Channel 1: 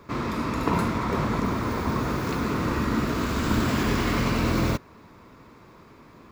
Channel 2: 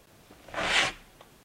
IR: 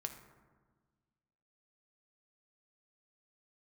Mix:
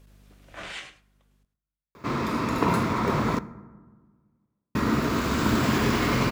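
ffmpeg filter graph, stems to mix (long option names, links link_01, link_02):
-filter_complex "[0:a]highpass=frequency=100:poles=1,adelay=1950,volume=-1.5dB,asplit=3[link_01][link_02][link_03];[link_01]atrim=end=3.39,asetpts=PTS-STARTPTS,afade=type=out:start_time=3.386:duration=0.004:curve=hsin[link_04];[link_02]atrim=start=3.39:end=4.75,asetpts=PTS-STARTPTS,volume=0[link_05];[link_03]atrim=start=4.75,asetpts=PTS-STARTPTS,afade=type=in:duration=0.004:curve=hsin[link_06];[link_04][link_05][link_06]concat=n=3:v=0:a=1,asplit=2[link_07][link_08];[link_08]volume=-4.5dB[link_09];[1:a]equalizer=frequency=770:width_type=o:width=0.77:gain=-4.5,aeval=exprs='val(0)+0.00447*(sin(2*PI*50*n/s)+sin(2*PI*2*50*n/s)/2+sin(2*PI*3*50*n/s)/3+sin(2*PI*4*50*n/s)/4+sin(2*PI*5*50*n/s)/5)':channel_layout=same,acrusher=bits=11:mix=0:aa=0.000001,volume=-7dB,afade=type=out:start_time=0.58:duration=0.25:silence=0.266073,asplit=3[link_10][link_11][link_12];[link_11]volume=-18dB[link_13];[link_12]volume=-13dB[link_14];[2:a]atrim=start_sample=2205[link_15];[link_09][link_13]amix=inputs=2:normalize=0[link_16];[link_16][link_15]afir=irnorm=-1:irlink=0[link_17];[link_14]aecho=0:1:105:1[link_18];[link_07][link_10][link_17][link_18]amix=inputs=4:normalize=0"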